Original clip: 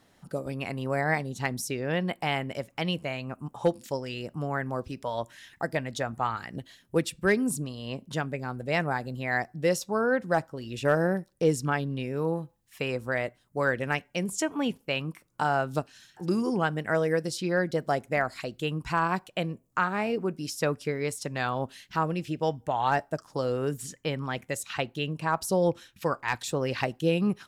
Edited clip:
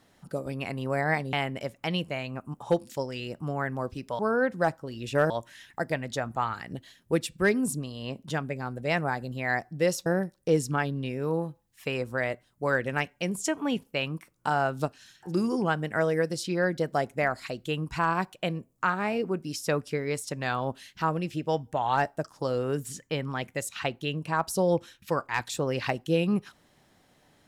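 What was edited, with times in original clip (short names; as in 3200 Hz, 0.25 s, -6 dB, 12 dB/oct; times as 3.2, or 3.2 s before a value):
1.33–2.27 cut
9.89–11 move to 5.13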